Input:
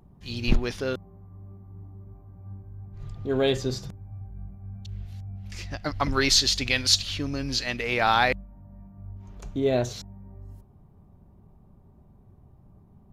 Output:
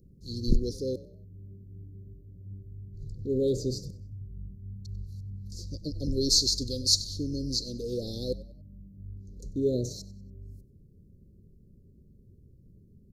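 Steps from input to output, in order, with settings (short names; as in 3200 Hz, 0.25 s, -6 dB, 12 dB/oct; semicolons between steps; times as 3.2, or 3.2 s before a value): Chebyshev band-stop 520–4200 Hz, order 5; frequency-shifting echo 95 ms, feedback 34%, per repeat +35 Hz, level -19.5 dB; gain -1.5 dB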